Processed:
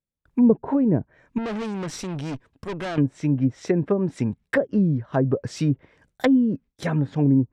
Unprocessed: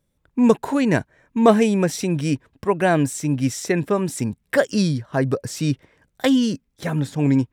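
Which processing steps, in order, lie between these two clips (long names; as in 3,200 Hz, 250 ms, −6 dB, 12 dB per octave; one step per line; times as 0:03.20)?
0:01.38–0:02.98: tube saturation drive 27 dB, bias 0.7
treble cut that deepens with the level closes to 440 Hz, closed at −15 dBFS
noise gate with hold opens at −50 dBFS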